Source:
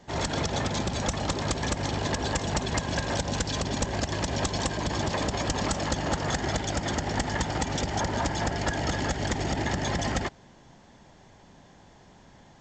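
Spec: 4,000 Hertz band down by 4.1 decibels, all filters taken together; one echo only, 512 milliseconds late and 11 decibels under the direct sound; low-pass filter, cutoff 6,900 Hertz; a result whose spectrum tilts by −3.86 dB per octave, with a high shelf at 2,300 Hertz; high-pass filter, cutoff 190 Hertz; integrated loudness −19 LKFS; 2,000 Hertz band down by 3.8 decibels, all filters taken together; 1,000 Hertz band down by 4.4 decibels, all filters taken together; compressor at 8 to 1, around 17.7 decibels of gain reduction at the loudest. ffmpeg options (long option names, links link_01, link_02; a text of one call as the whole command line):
ffmpeg -i in.wav -af "highpass=190,lowpass=6900,equalizer=frequency=1000:width_type=o:gain=-5.5,equalizer=frequency=2000:width_type=o:gain=-3,highshelf=frequency=2300:gain=3.5,equalizer=frequency=4000:width_type=o:gain=-7,acompressor=threshold=-46dB:ratio=8,aecho=1:1:512:0.282,volume=30dB" out.wav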